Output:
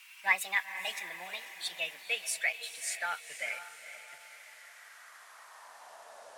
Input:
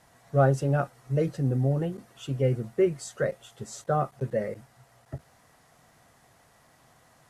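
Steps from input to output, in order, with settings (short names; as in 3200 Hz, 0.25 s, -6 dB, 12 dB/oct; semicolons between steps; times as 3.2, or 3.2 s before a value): speed glide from 142% -> 87%; high-pass sweep 2500 Hz -> 430 Hz, 4.22–6.82; diffused feedback echo 0.483 s, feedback 48%, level -11.5 dB; gain +5.5 dB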